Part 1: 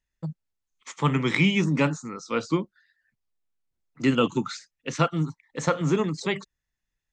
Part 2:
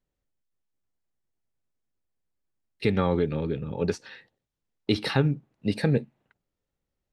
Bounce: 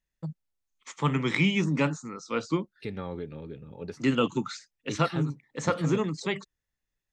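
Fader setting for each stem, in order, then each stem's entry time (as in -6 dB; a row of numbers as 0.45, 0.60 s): -3.0, -12.0 dB; 0.00, 0.00 s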